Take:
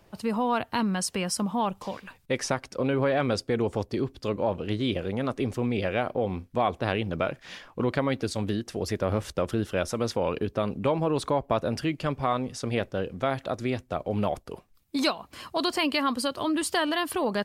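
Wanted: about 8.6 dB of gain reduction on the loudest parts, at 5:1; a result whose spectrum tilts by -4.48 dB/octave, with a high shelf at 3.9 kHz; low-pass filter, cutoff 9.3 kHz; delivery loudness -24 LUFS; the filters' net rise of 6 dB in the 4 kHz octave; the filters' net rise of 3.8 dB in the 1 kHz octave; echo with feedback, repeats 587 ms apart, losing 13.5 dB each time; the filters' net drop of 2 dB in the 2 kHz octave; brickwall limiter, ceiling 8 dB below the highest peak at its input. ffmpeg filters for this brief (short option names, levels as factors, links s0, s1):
-af "lowpass=9300,equalizer=f=1000:t=o:g=6,equalizer=f=2000:t=o:g=-8,highshelf=f=3900:g=5.5,equalizer=f=4000:t=o:g=6.5,acompressor=threshold=0.0447:ratio=5,alimiter=limit=0.0794:level=0:latency=1,aecho=1:1:587|1174:0.211|0.0444,volume=2.99"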